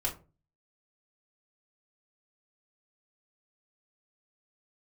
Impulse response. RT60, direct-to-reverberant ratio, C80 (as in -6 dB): 0.35 s, -2.0 dB, 19.0 dB